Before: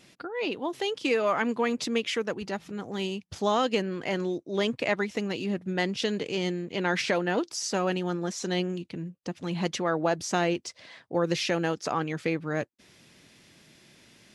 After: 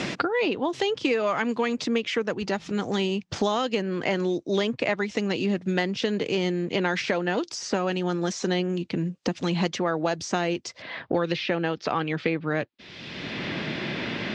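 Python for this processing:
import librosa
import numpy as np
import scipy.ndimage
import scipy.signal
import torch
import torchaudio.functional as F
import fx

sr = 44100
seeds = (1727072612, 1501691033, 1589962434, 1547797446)

y = fx.lowpass(x, sr, hz=fx.steps((0.0, 7100.0), (10.82, 4000.0)), slope=24)
y = fx.band_squash(y, sr, depth_pct=100)
y = y * 10.0 ** (1.5 / 20.0)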